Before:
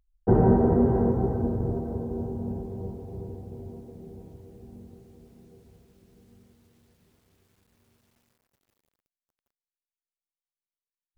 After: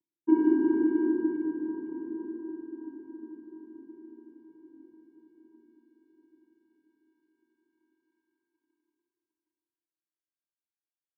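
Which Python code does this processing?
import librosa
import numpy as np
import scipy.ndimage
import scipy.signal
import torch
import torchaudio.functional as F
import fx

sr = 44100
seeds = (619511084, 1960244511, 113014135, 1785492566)

y = fx.wiener(x, sr, points=9)
y = fx.vocoder(y, sr, bands=8, carrier='square', carrier_hz=319.0)
y = fx.rev_schroeder(y, sr, rt60_s=2.0, comb_ms=26, drr_db=-0.5)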